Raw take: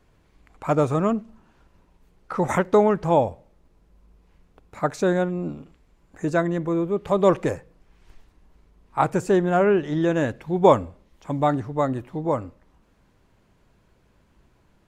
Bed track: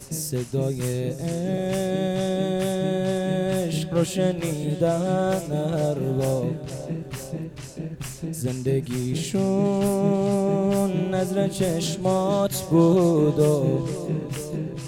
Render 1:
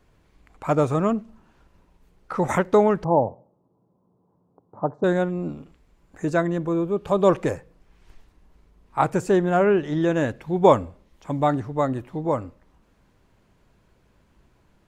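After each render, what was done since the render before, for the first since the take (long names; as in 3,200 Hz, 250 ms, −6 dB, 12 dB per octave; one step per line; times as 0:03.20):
0:03.04–0:05.04: elliptic band-pass filter 110–1,000 Hz
0:06.55–0:07.31: notch filter 2,000 Hz, Q 5.8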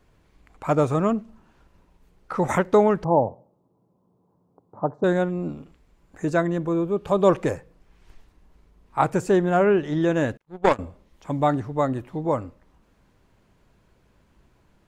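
0:10.37–0:10.79: power curve on the samples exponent 2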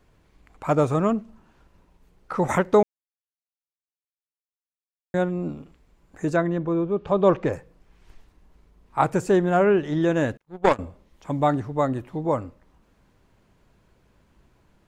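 0:02.83–0:05.14: silence
0:06.36–0:07.53: high-frequency loss of the air 140 metres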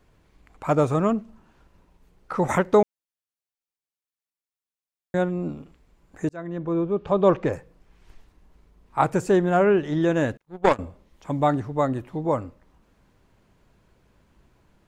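0:06.29–0:06.78: fade in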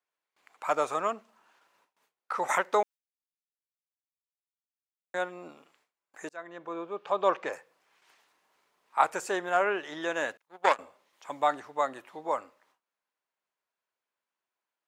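noise gate with hold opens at −47 dBFS
high-pass filter 820 Hz 12 dB per octave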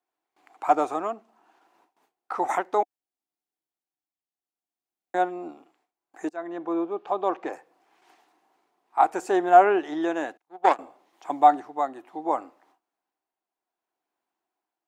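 hollow resonant body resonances 320/730 Hz, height 16 dB, ringing for 25 ms
shaped tremolo triangle 0.65 Hz, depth 60%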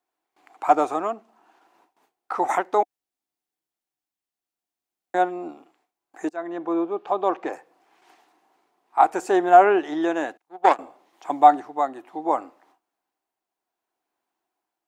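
level +3 dB
brickwall limiter −2 dBFS, peak gain reduction 2 dB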